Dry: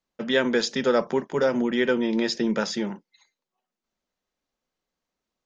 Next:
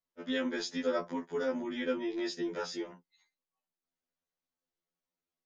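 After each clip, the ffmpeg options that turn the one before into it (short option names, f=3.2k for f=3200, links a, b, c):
-af "afftfilt=real='re*2*eq(mod(b,4),0)':imag='im*2*eq(mod(b,4),0)':win_size=2048:overlap=0.75,volume=-8.5dB"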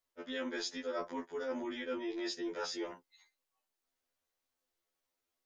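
-af "equalizer=f=180:t=o:w=0.76:g=-13,areverse,acompressor=threshold=-42dB:ratio=5,areverse,volume=5.5dB"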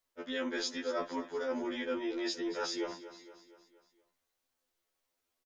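-af "aecho=1:1:234|468|702|936|1170:0.188|0.0998|0.0529|0.028|0.0149,volume=3dB"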